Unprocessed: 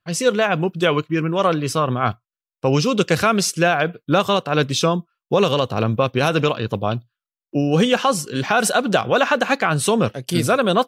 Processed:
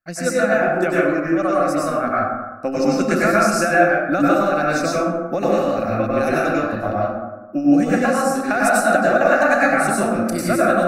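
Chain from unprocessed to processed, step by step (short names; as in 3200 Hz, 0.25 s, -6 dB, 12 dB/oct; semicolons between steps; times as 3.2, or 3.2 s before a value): transient shaper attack +7 dB, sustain 0 dB; fixed phaser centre 650 Hz, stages 8; plate-style reverb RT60 1.2 s, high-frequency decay 0.4×, pre-delay 85 ms, DRR -6.5 dB; gain -5.5 dB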